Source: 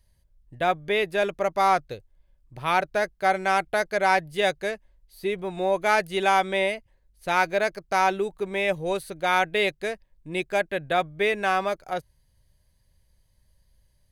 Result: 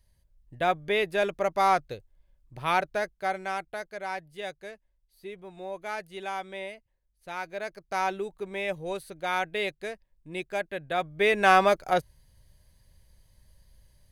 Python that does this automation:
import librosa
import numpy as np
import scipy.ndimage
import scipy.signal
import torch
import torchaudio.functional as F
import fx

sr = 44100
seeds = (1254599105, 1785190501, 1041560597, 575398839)

y = fx.gain(x, sr, db=fx.line((2.71, -2.0), (3.95, -13.5), (7.43, -13.5), (7.98, -6.5), (10.89, -6.5), (11.51, 5.0)))